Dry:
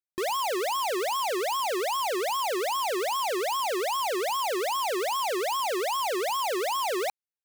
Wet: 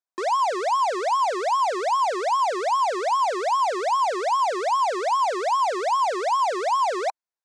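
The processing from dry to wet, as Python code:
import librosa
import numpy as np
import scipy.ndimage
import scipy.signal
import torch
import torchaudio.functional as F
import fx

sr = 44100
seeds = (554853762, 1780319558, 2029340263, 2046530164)

y = fx.cabinet(x, sr, low_hz=270.0, low_slope=24, high_hz=7900.0, hz=(690.0, 1000.0, 1500.0, 2900.0), db=(7, 9, 4, -8))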